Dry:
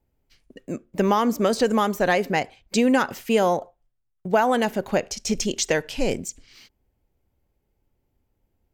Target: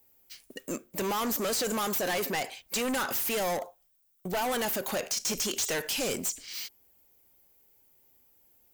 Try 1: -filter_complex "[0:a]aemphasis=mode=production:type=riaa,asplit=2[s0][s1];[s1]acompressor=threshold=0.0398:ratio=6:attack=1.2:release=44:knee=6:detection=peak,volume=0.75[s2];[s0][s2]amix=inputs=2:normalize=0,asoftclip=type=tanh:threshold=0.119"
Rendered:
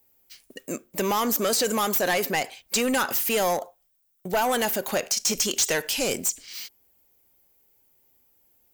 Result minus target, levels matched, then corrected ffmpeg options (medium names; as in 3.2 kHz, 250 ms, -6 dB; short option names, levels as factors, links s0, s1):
saturation: distortion -5 dB
-filter_complex "[0:a]aemphasis=mode=production:type=riaa,asplit=2[s0][s1];[s1]acompressor=threshold=0.0398:ratio=6:attack=1.2:release=44:knee=6:detection=peak,volume=0.75[s2];[s0][s2]amix=inputs=2:normalize=0,asoftclip=type=tanh:threshold=0.0422"